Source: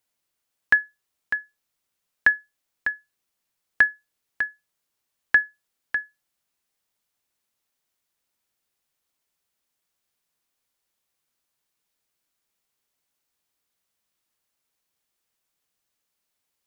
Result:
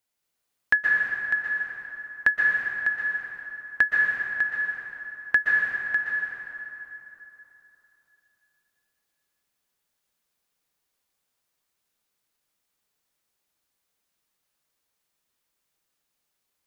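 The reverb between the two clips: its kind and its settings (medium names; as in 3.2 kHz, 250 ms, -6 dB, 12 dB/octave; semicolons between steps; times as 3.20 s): plate-style reverb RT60 3.4 s, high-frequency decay 0.65×, pre-delay 110 ms, DRR -3 dB; trim -3 dB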